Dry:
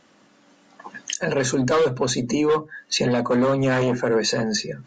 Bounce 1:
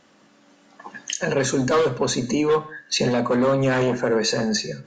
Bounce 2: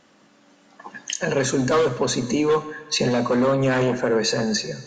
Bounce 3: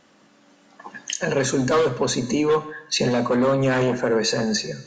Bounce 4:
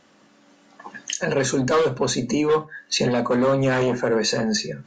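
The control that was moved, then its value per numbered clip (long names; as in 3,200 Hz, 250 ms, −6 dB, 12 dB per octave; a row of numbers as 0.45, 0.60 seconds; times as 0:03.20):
reverb whose tail is shaped and stops, gate: 210, 520, 340, 110 milliseconds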